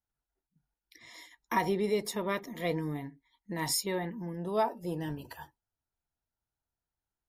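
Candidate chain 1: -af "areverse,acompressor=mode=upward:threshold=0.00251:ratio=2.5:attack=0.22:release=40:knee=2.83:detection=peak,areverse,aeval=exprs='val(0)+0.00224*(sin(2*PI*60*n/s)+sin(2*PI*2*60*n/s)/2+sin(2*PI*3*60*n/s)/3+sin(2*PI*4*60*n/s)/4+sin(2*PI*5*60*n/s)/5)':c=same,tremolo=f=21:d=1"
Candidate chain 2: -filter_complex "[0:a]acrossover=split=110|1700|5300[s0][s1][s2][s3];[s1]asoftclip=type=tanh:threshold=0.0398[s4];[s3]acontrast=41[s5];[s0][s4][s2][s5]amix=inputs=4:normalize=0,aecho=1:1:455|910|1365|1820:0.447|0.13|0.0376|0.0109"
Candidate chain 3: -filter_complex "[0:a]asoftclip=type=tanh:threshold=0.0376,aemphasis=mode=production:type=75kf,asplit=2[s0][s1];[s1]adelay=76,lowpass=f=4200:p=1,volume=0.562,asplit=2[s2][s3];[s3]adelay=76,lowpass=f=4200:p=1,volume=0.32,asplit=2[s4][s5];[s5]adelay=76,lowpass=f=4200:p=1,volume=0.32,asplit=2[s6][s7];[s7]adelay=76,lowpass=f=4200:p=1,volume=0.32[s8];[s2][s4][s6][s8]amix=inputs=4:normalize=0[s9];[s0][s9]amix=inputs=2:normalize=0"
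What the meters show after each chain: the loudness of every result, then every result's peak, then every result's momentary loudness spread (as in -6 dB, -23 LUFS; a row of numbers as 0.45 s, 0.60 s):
-37.5 LUFS, -33.0 LUFS, -30.0 LUFS; -18.5 dBFS, -13.0 dBFS, -10.5 dBFS; 19 LU, 21 LU, 21 LU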